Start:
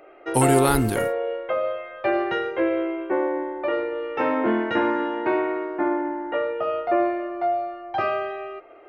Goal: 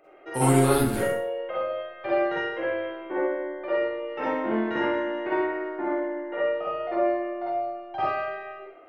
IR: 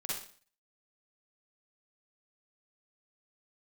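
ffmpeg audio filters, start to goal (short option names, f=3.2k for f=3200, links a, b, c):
-filter_complex "[1:a]atrim=start_sample=2205[a];[0:a][a]afir=irnorm=-1:irlink=0,volume=-4.5dB"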